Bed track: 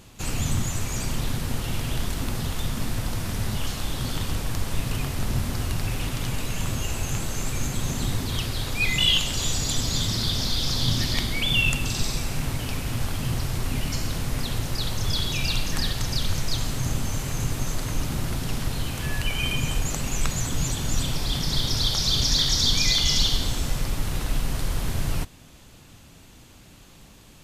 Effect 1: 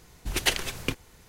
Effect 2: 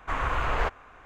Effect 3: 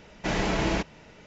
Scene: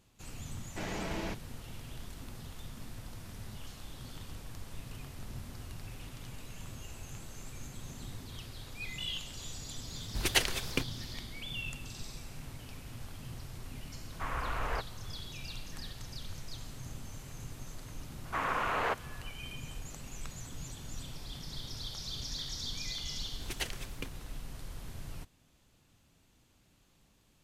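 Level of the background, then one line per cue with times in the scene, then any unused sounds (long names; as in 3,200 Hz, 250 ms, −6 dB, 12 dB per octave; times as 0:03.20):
bed track −18 dB
0:00.52: mix in 3 −11.5 dB
0:09.89: mix in 1 −3 dB
0:14.12: mix in 2 −8.5 dB
0:18.25: mix in 2 −3 dB + Butterworth high-pass 160 Hz 72 dB per octave
0:23.14: mix in 1 −13 dB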